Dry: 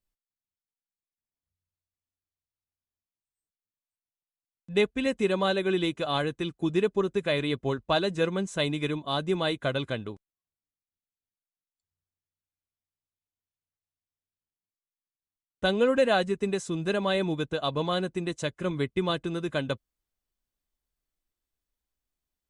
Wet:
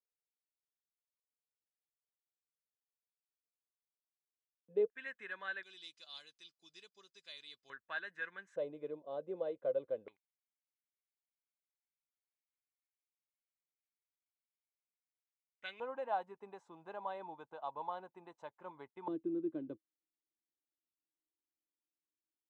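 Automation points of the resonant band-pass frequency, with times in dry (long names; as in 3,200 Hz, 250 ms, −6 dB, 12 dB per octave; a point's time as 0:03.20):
resonant band-pass, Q 8.7
470 Hz
from 0:04.90 1,700 Hz
from 0:05.63 4,900 Hz
from 0:07.70 1,700 Hz
from 0:08.56 520 Hz
from 0:10.08 2,200 Hz
from 0:15.80 880 Hz
from 0:19.08 320 Hz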